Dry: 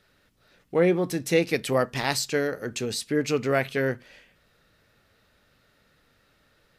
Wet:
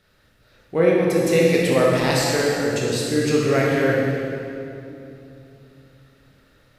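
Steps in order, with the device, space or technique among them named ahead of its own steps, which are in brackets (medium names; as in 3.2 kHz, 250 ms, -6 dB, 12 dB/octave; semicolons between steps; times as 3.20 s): stairwell (reverberation RT60 2.9 s, pre-delay 17 ms, DRR -4 dB); bass shelf 210 Hz +3.5 dB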